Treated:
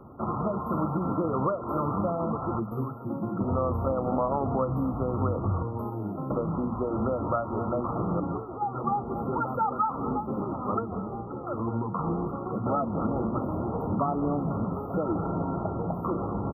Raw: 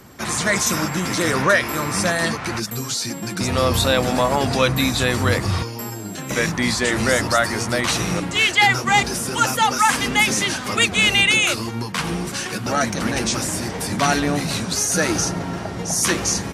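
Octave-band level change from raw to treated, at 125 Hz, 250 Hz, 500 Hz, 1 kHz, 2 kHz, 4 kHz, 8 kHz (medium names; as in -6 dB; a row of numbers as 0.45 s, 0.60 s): -5.5 dB, -5.0 dB, -6.5 dB, -7.5 dB, under -30 dB, under -40 dB, under -40 dB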